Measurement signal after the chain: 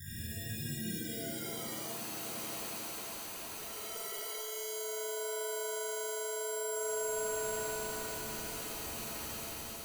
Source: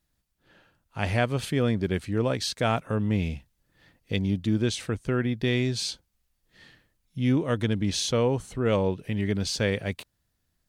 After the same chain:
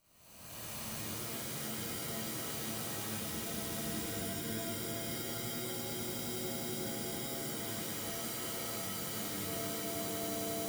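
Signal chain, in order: time blur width 0.87 s; band shelf 2600 Hz -8 dB 2.5 oct; sample-and-hold 25×; pre-emphasis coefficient 0.9; swelling echo 90 ms, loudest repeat 5, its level -14.5 dB; compressor 6:1, threshold -52 dBFS; shimmer reverb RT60 1.4 s, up +7 st, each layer -2 dB, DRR -7 dB; gain +8 dB

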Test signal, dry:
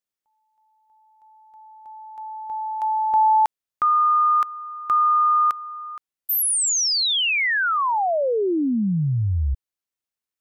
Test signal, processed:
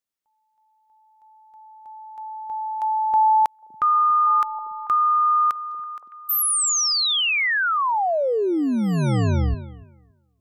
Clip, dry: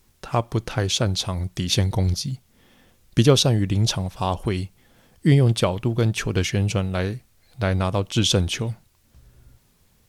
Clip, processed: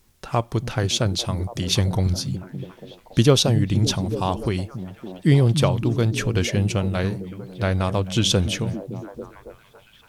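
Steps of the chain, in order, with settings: delay with a stepping band-pass 0.282 s, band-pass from 160 Hz, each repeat 0.7 oct, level -5 dB

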